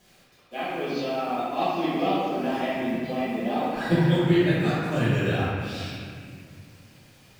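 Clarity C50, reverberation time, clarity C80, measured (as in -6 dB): -4.5 dB, 2.0 s, -1.5 dB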